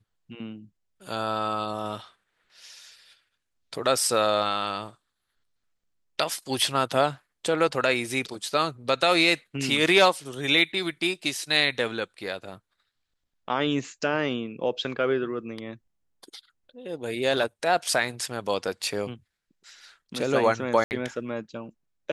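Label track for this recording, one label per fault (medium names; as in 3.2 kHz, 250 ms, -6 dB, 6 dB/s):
20.840000	20.910000	dropout 69 ms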